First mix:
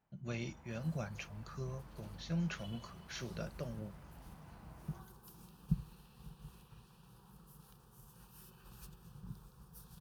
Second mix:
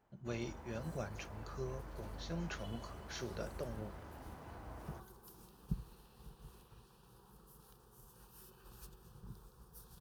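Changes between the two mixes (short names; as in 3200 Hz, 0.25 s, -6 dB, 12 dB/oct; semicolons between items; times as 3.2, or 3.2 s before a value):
first sound +7.5 dB; master: add fifteen-band EQ 160 Hz -8 dB, 400 Hz +5 dB, 2500 Hz -4 dB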